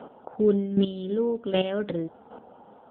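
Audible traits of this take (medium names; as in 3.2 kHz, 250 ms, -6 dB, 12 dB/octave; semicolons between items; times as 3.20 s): a quantiser's noise floor 12-bit, dither none; chopped level 1.3 Hz, depth 65%, duty 10%; AMR-NB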